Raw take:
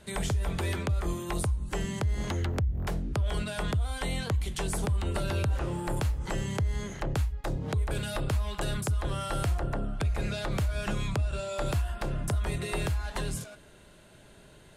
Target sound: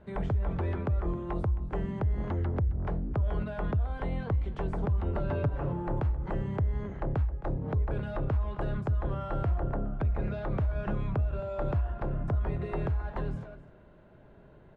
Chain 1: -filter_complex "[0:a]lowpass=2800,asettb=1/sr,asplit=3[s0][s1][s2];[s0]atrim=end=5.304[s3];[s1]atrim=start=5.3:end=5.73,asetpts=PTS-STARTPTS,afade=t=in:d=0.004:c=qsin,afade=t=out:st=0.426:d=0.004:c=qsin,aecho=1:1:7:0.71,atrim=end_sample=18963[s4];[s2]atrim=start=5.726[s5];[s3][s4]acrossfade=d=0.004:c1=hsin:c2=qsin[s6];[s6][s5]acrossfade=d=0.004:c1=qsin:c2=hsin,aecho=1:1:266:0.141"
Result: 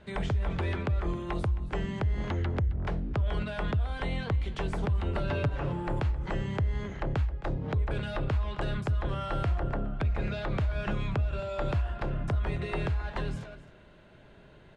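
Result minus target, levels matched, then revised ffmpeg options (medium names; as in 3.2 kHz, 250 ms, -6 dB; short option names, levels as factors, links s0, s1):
2 kHz band +6.5 dB
-filter_complex "[0:a]lowpass=1200,asettb=1/sr,asplit=3[s0][s1][s2];[s0]atrim=end=5.304[s3];[s1]atrim=start=5.3:end=5.73,asetpts=PTS-STARTPTS,afade=t=in:d=0.004:c=qsin,afade=t=out:st=0.426:d=0.004:c=qsin,aecho=1:1:7:0.71,atrim=end_sample=18963[s4];[s2]atrim=start=5.726[s5];[s3][s4]acrossfade=d=0.004:c1=hsin:c2=qsin[s6];[s6][s5]acrossfade=d=0.004:c1=qsin:c2=hsin,aecho=1:1:266:0.141"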